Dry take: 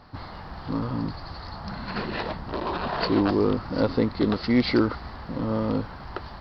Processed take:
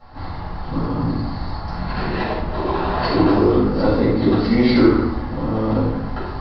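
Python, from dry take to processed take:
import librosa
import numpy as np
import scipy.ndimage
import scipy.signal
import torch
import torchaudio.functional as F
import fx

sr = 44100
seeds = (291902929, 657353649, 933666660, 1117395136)

y = fx.high_shelf(x, sr, hz=4400.0, db=-5.0)
y = fx.room_shoebox(y, sr, seeds[0], volume_m3=330.0, walls='mixed', distance_m=6.5)
y = y * librosa.db_to_amplitude(-8.5)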